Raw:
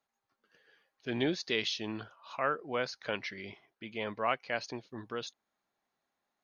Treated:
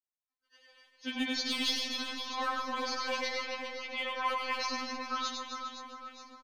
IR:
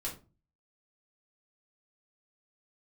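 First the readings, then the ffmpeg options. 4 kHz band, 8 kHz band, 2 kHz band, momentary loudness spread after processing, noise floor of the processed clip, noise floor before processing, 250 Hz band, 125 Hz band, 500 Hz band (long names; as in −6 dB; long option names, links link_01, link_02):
+5.5 dB, can't be measured, +2.0 dB, 11 LU, below −85 dBFS, below −85 dBFS, −1.0 dB, below −20 dB, −4.5 dB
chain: -filter_complex "[0:a]crystalizer=i=6:c=0,lowpass=6200,volume=18dB,asoftclip=hard,volume=-18dB,acompressor=threshold=-33dB:ratio=2.5,asplit=2[link_01][link_02];[link_02]aecho=0:1:100|260|516|925.6|1581:0.631|0.398|0.251|0.158|0.1[link_03];[link_01][link_03]amix=inputs=2:normalize=0,agate=range=-33dB:threshold=-59dB:ratio=3:detection=peak,equalizer=frequency=970:width_type=o:width=0.31:gain=14,asplit=2[link_04][link_05];[link_05]adelay=402,lowpass=frequency=1900:poles=1,volume=-5dB,asplit=2[link_06][link_07];[link_07]adelay=402,lowpass=frequency=1900:poles=1,volume=0.53,asplit=2[link_08][link_09];[link_09]adelay=402,lowpass=frequency=1900:poles=1,volume=0.53,asplit=2[link_10][link_11];[link_11]adelay=402,lowpass=frequency=1900:poles=1,volume=0.53,asplit=2[link_12][link_13];[link_13]adelay=402,lowpass=frequency=1900:poles=1,volume=0.53,asplit=2[link_14][link_15];[link_15]adelay=402,lowpass=frequency=1900:poles=1,volume=0.53,asplit=2[link_16][link_17];[link_17]adelay=402,lowpass=frequency=1900:poles=1,volume=0.53[link_18];[link_04][link_06][link_08][link_10][link_12][link_14][link_16][link_18]amix=inputs=8:normalize=0,asplit=2[link_19][link_20];[1:a]atrim=start_sample=2205,adelay=141[link_21];[link_20][link_21]afir=irnorm=-1:irlink=0,volume=-13dB[link_22];[link_19][link_22]amix=inputs=2:normalize=0,afftfilt=real='re*3.46*eq(mod(b,12),0)':imag='im*3.46*eq(mod(b,12),0)':win_size=2048:overlap=0.75,volume=1dB"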